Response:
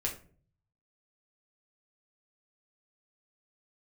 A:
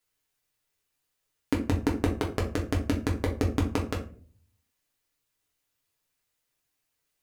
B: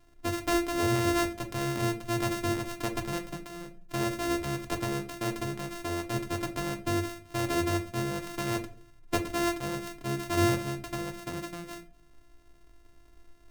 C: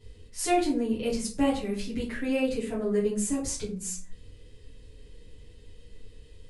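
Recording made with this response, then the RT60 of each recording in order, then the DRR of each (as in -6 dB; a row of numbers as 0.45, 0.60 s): A; 0.45, 0.45, 0.45 s; -2.0, 4.5, -9.5 dB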